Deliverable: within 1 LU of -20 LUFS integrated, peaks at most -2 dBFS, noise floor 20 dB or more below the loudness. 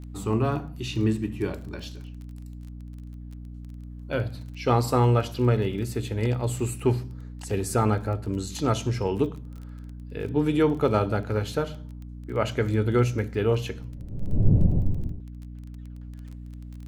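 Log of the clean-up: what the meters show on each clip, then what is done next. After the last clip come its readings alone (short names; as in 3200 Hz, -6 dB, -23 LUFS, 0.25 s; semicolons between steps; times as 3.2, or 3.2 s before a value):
ticks 19/s; hum 60 Hz; harmonics up to 300 Hz; hum level -36 dBFS; loudness -26.0 LUFS; peak -7.0 dBFS; loudness target -20.0 LUFS
-> de-click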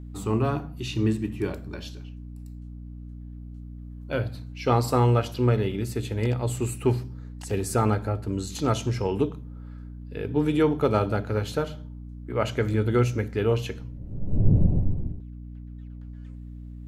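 ticks 0/s; hum 60 Hz; harmonics up to 300 Hz; hum level -36 dBFS
-> notches 60/120/180/240/300 Hz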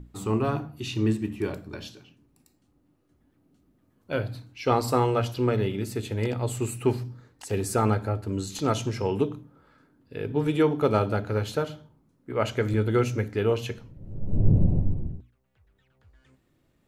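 hum none; loudness -27.0 LUFS; peak -7.5 dBFS; loudness target -20.0 LUFS
-> gain +7 dB; limiter -2 dBFS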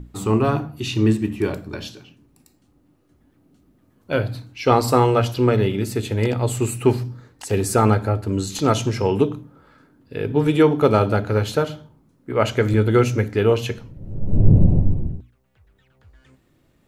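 loudness -20.0 LUFS; peak -2.0 dBFS; noise floor -61 dBFS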